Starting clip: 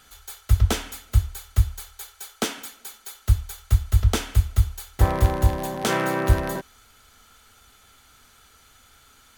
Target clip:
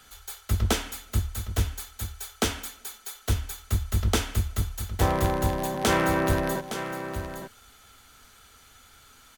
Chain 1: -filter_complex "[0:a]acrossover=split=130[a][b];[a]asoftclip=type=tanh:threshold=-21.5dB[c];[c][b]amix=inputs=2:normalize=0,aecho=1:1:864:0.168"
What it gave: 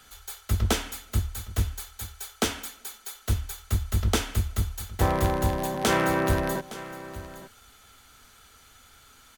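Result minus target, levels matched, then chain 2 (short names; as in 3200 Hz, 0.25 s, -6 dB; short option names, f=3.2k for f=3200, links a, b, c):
echo-to-direct -5.5 dB
-filter_complex "[0:a]acrossover=split=130[a][b];[a]asoftclip=type=tanh:threshold=-21.5dB[c];[c][b]amix=inputs=2:normalize=0,aecho=1:1:864:0.335"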